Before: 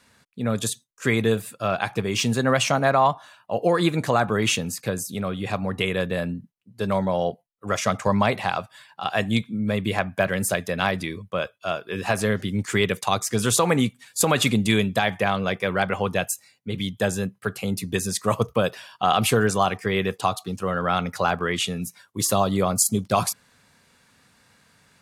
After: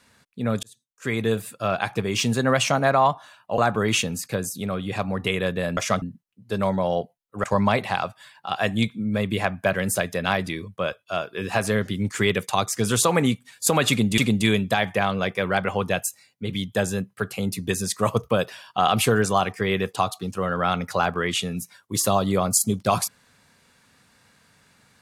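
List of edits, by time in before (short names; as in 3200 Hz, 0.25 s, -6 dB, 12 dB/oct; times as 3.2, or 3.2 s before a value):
0.63–1.45 fade in
3.58–4.12 cut
7.73–7.98 move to 6.31
14.43–14.72 loop, 2 plays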